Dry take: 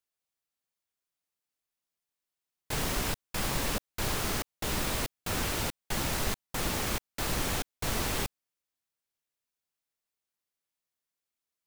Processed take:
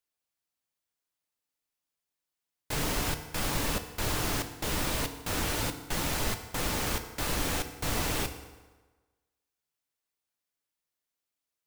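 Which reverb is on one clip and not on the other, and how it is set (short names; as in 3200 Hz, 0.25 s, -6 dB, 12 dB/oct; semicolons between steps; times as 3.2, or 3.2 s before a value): FDN reverb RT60 1.3 s, low-frequency decay 0.9×, high-frequency decay 0.75×, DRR 7 dB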